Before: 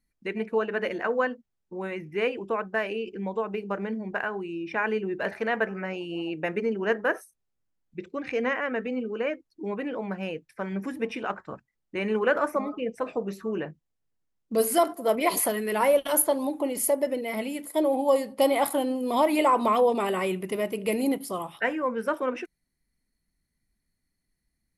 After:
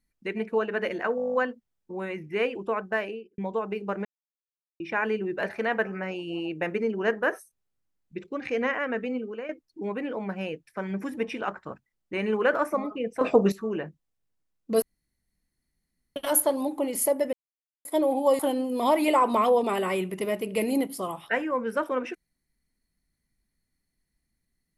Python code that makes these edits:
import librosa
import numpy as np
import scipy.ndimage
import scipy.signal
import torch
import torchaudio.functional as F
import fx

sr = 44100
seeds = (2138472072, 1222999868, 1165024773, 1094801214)

y = fx.studio_fade_out(x, sr, start_s=2.77, length_s=0.43)
y = fx.edit(y, sr, fx.stutter(start_s=1.16, slice_s=0.02, count=10),
    fx.silence(start_s=3.87, length_s=0.75),
    fx.fade_out_to(start_s=8.95, length_s=0.36, floor_db=-11.5),
    fx.clip_gain(start_s=13.03, length_s=0.31, db=10.5),
    fx.room_tone_fill(start_s=14.64, length_s=1.34),
    fx.silence(start_s=17.15, length_s=0.52),
    fx.cut(start_s=18.21, length_s=0.49), tone=tone)